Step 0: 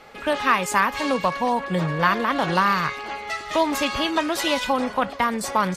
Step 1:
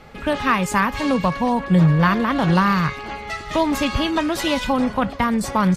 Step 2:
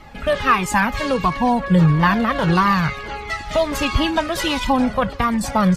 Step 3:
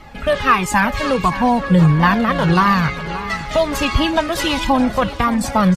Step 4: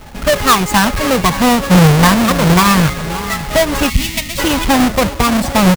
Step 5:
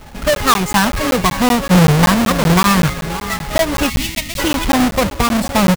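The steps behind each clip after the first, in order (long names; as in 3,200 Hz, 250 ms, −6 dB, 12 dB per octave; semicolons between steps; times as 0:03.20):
bass and treble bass +14 dB, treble −1 dB
flanger whose copies keep moving one way falling 1.5 Hz; level +6 dB
repeating echo 574 ms, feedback 33%, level −14.5 dB; level +2 dB
each half-wave held at its own peak; gain on a spectral selection 0:03.89–0:04.38, 270–1,800 Hz −17 dB
regular buffer underruns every 0.19 s, samples 512, zero, from 0:00.35; level −2 dB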